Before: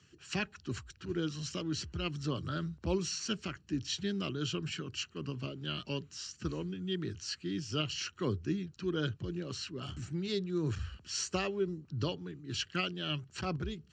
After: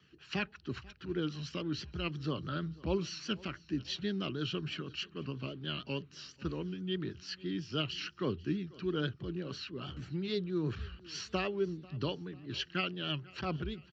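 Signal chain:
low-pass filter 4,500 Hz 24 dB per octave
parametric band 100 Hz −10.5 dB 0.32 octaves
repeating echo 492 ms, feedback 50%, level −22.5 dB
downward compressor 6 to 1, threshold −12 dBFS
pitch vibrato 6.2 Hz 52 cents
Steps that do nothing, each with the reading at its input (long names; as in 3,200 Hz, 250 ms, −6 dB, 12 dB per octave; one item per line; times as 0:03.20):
downward compressor, threshold −12 dBFS: peak of its input −19.5 dBFS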